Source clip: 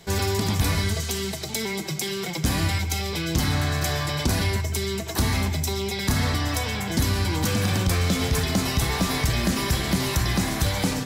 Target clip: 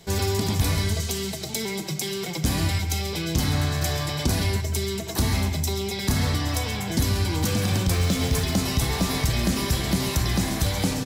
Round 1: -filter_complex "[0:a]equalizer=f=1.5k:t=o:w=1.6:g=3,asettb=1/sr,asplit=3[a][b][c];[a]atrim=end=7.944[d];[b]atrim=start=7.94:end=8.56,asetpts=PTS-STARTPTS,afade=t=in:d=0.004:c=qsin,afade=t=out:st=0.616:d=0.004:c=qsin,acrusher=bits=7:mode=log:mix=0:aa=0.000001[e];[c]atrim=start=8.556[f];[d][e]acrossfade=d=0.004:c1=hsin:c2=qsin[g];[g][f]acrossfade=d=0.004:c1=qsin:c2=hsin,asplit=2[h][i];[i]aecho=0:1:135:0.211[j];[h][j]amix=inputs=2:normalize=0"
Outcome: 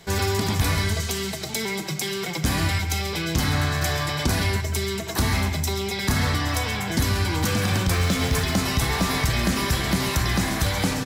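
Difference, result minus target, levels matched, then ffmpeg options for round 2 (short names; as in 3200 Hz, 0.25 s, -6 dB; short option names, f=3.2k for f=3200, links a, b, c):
2000 Hz band +4.5 dB
-filter_complex "[0:a]equalizer=f=1.5k:t=o:w=1.6:g=-4,asettb=1/sr,asplit=3[a][b][c];[a]atrim=end=7.944[d];[b]atrim=start=7.94:end=8.56,asetpts=PTS-STARTPTS,afade=t=in:d=0.004:c=qsin,afade=t=out:st=0.616:d=0.004:c=qsin,acrusher=bits=7:mode=log:mix=0:aa=0.000001[e];[c]atrim=start=8.556[f];[d][e]acrossfade=d=0.004:c1=hsin:c2=qsin[g];[g][f]acrossfade=d=0.004:c1=qsin:c2=hsin,asplit=2[h][i];[i]aecho=0:1:135:0.211[j];[h][j]amix=inputs=2:normalize=0"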